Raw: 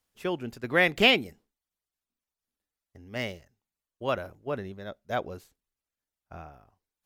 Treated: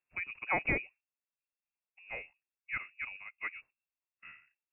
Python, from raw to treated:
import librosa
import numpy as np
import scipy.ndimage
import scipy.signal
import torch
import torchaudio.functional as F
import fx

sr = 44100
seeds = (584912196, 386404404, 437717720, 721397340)

y = fx.stretch_vocoder(x, sr, factor=0.67)
y = fx.freq_invert(y, sr, carrier_hz=2700)
y = y * librosa.db_to_amplitude(-8.0)